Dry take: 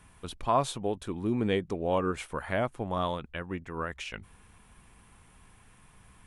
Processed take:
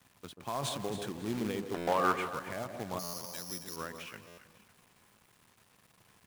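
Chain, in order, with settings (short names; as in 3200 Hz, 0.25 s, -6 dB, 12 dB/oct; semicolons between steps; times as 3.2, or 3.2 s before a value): 0.59–1.09 transient shaper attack +7 dB, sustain +11 dB; tape echo 0.164 s, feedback 41%, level -13 dB, low-pass 2100 Hz; 2.99–3.76 careless resampling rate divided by 8×, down filtered, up zero stuff; HPF 100 Hz 24 dB/oct; high shelf 6400 Hz -6 dB; companded quantiser 4-bit; limiter -17.5 dBFS, peak gain reduction 11.5 dB; 1.74–2.3 bell 1300 Hz +14 dB 2 oct; echo with dull and thin repeats by turns 0.137 s, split 1000 Hz, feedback 56%, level -7 dB; stuck buffer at 1.77/3.03/4.27, samples 512, times 8; gain -7 dB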